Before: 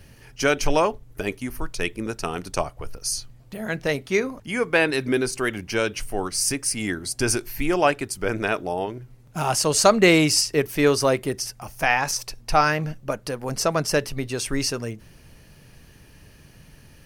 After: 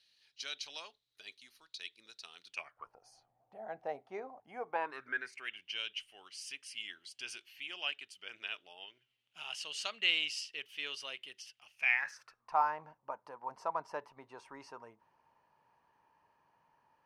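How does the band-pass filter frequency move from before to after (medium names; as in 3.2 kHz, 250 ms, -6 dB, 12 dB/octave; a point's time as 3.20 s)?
band-pass filter, Q 8.4
2.43 s 3.9 kHz
2.97 s 760 Hz
4.67 s 760 Hz
5.57 s 3 kHz
11.67 s 3 kHz
12.58 s 940 Hz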